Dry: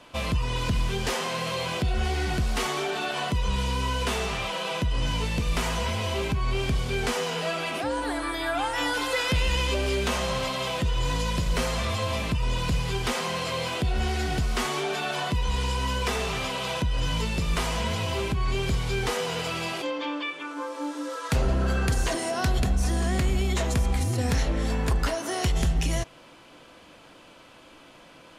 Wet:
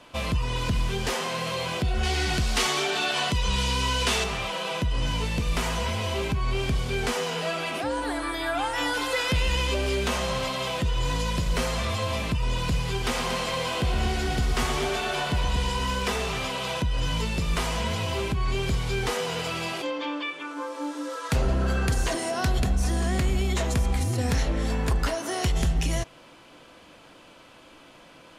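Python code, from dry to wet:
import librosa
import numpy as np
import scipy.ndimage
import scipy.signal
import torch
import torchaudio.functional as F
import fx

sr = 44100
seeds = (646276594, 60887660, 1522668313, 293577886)

y = fx.peak_eq(x, sr, hz=4900.0, db=7.5, octaves=2.7, at=(2.03, 4.24))
y = fx.echo_heads(y, sr, ms=117, heads='first and second', feedback_pct=46, wet_db=-10.0, at=(12.9, 16.13))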